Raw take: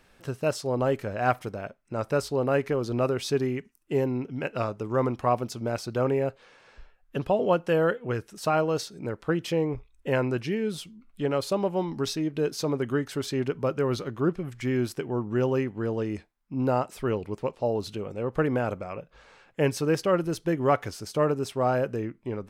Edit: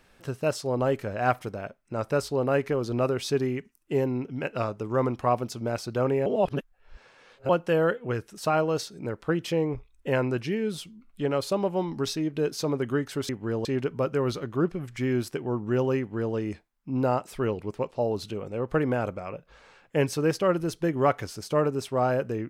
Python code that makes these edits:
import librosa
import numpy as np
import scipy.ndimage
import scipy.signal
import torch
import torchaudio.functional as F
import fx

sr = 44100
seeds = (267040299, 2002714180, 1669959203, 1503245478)

y = fx.edit(x, sr, fx.reverse_span(start_s=6.26, length_s=1.23),
    fx.duplicate(start_s=15.63, length_s=0.36, to_s=13.29), tone=tone)